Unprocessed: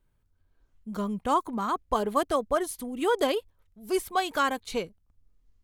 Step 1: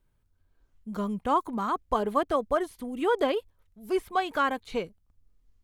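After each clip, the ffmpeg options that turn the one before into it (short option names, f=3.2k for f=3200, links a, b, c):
-filter_complex "[0:a]acrossover=split=3300[a][b];[b]acompressor=threshold=-51dB:ratio=4:attack=1:release=60[c];[a][c]amix=inputs=2:normalize=0"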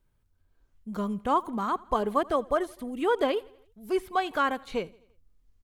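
-af "aecho=1:1:83|166|249|332:0.0668|0.0361|0.0195|0.0105"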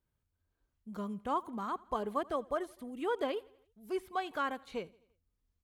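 -af "highpass=43,volume=-8.5dB"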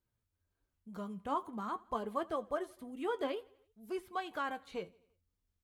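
-af "flanger=delay=8.7:depth=2.6:regen=52:speed=0.5:shape=sinusoidal,volume=2dB"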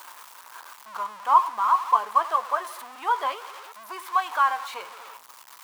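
-af "aeval=exprs='val(0)+0.5*0.00708*sgn(val(0))':c=same,highpass=f=1k:t=q:w=4.5,volume=7dB"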